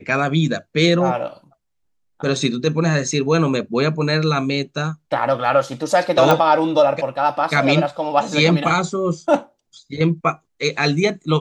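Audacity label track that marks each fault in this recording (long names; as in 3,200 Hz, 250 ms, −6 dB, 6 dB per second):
6.310000	6.310000	click −3 dBFS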